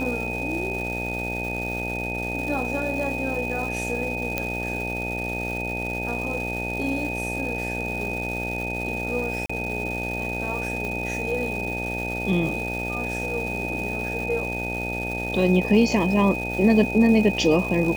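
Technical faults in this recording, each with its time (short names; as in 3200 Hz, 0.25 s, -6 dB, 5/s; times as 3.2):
buzz 60 Hz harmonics 15 -31 dBFS
crackle 600/s -32 dBFS
tone 2500 Hz -29 dBFS
4.38 pop -9 dBFS
9.46–9.49 gap 35 ms
10.85 pop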